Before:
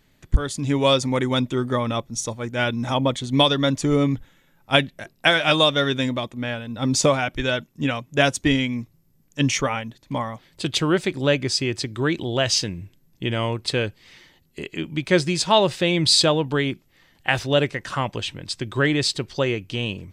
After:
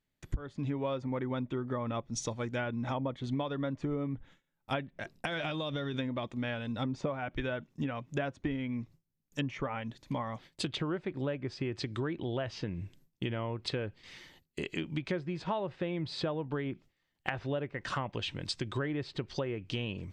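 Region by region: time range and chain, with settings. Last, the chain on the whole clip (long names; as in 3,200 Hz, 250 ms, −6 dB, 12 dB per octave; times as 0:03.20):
0:05.15–0:05.94: low-shelf EQ 380 Hz +8.5 dB + downward compressor 8 to 1, threshold −24 dBFS
whole clip: treble cut that deepens with the level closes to 1,700 Hz, closed at −19 dBFS; noise gate with hold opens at −43 dBFS; downward compressor 6 to 1, threshold −29 dBFS; level −2.5 dB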